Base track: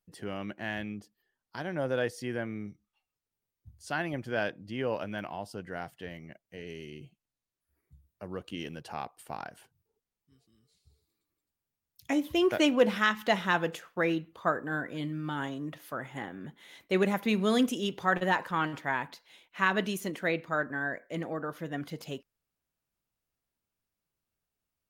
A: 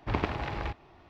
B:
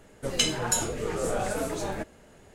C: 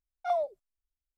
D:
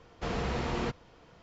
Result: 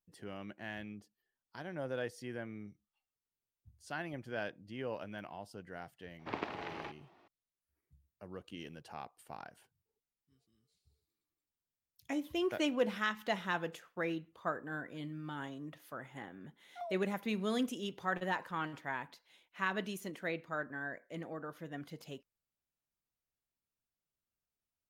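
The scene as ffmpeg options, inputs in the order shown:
-filter_complex "[0:a]volume=-8.5dB[a];[1:a]highpass=240,atrim=end=1.09,asetpts=PTS-STARTPTS,volume=-7.5dB,afade=t=in:d=0.004:c=hsin,afade=t=out:st=1.086:d=0.004:c=hsin,adelay=6190[b];[3:a]atrim=end=1.17,asetpts=PTS-STARTPTS,volume=-15.5dB,afade=t=in:d=0.004:c=hsin,afade=t=out:st=1.166:d=0.004:c=hsin,adelay=16510[c];[a][b][c]amix=inputs=3:normalize=0"

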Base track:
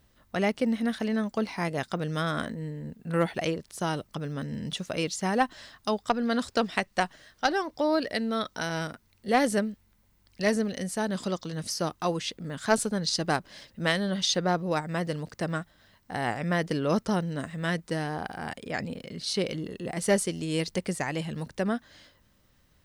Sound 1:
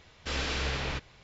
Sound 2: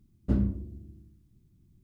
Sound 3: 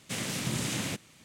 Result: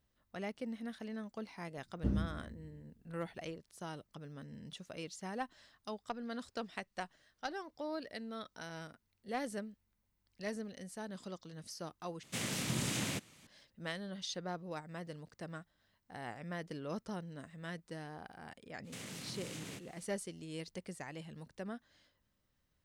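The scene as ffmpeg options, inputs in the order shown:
-filter_complex "[3:a]asplit=2[a][b];[0:a]volume=-15.5dB[c];[b]acompressor=threshold=-37dB:ratio=6:attack=3.2:release=140:knee=1:detection=peak[d];[c]asplit=2[e][f];[e]atrim=end=12.234[g];[a]atrim=end=1.24,asetpts=PTS-STARTPTS,volume=-4dB[h];[f]atrim=start=13.466[i];[2:a]atrim=end=1.83,asetpts=PTS-STARTPTS,volume=-8dB,afade=t=in:d=0.004:c=hsin,afade=t=out:st=1.826:d=0.004:c=hsin,adelay=1750[j];[d]atrim=end=1.24,asetpts=PTS-STARTPTS,volume=-6.5dB,afade=t=in:d=0.05,afade=t=out:st=1.19:d=0.05,adelay=18830[k];[g][h]acrossfade=d=0.004:c1=hsin:c2=hsin[l];[l][i]acrossfade=d=0.004:c1=hsin:c2=hsin[m];[m][j][k]amix=inputs=3:normalize=0"

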